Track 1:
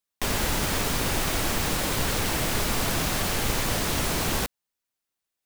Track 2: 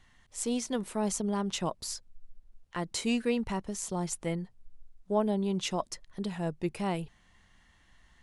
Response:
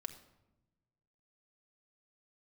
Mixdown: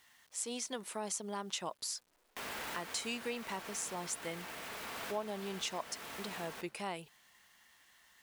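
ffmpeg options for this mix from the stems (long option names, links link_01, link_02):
-filter_complex "[0:a]acrossover=split=3100[link_01][link_02];[link_02]acompressor=threshold=-40dB:ratio=4:attack=1:release=60[link_03];[link_01][link_03]amix=inputs=2:normalize=0,acrusher=bits=7:dc=4:mix=0:aa=0.000001,adelay=2150,volume=-11.5dB,asplit=2[link_04][link_05];[link_05]volume=-3.5dB[link_06];[1:a]acrusher=bits=10:mix=0:aa=0.000001,volume=1dB,asplit=2[link_07][link_08];[link_08]apad=whole_len=335358[link_09];[link_04][link_09]sidechaincompress=threshold=-36dB:ratio=8:attack=7.8:release=995[link_10];[2:a]atrim=start_sample=2205[link_11];[link_06][link_11]afir=irnorm=-1:irlink=0[link_12];[link_10][link_07][link_12]amix=inputs=3:normalize=0,highpass=frequency=900:poles=1,acompressor=threshold=-38dB:ratio=2"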